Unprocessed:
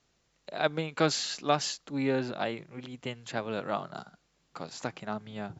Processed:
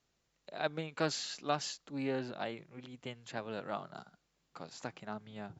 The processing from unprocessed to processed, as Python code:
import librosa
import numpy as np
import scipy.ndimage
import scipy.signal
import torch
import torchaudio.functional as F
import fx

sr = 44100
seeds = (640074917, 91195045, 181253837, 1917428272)

y = fx.doppler_dist(x, sr, depth_ms=0.11)
y = y * librosa.db_to_amplitude(-7.0)